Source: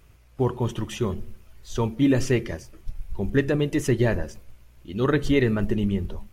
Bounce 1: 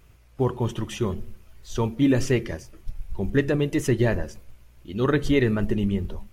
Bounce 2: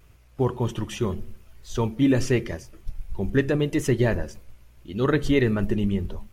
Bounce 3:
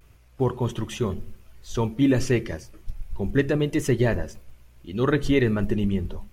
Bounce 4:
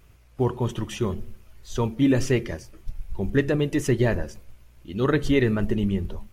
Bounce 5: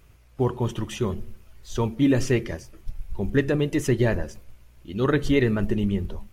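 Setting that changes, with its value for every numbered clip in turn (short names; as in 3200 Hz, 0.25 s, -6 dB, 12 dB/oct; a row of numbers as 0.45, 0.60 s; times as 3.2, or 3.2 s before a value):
vibrato, rate: 2.7, 0.84, 0.31, 1.8, 11 Hz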